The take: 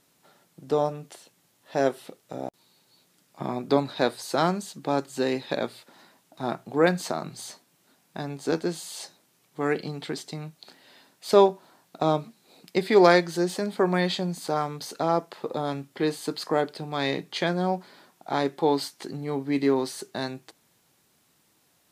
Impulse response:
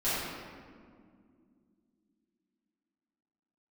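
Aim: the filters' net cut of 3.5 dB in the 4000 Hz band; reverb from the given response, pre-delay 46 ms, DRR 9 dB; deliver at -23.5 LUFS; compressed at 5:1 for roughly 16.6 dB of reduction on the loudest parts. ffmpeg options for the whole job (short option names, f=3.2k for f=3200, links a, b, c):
-filter_complex "[0:a]equalizer=f=4k:t=o:g=-4,acompressor=threshold=-31dB:ratio=5,asplit=2[a][b];[1:a]atrim=start_sample=2205,adelay=46[c];[b][c]afir=irnorm=-1:irlink=0,volume=-19dB[d];[a][d]amix=inputs=2:normalize=0,volume=13dB"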